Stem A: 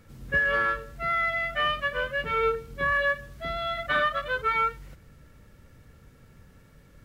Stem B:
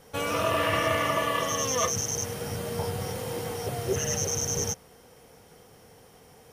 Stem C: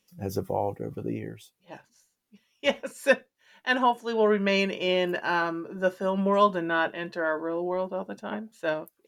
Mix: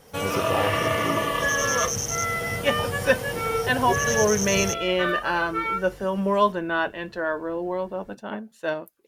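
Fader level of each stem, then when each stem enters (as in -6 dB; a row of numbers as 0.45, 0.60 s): -2.0, +1.5, +1.0 dB; 1.10, 0.00, 0.00 s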